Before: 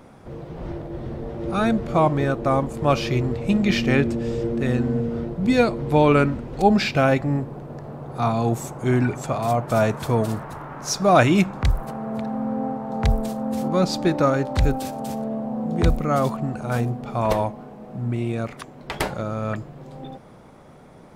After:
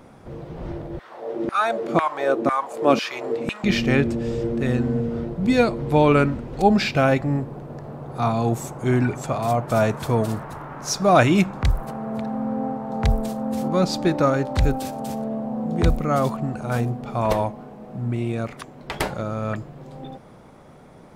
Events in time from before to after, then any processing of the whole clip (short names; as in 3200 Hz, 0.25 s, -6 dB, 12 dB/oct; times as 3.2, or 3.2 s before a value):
0.99–3.64 LFO high-pass saw down 2 Hz 210–1700 Hz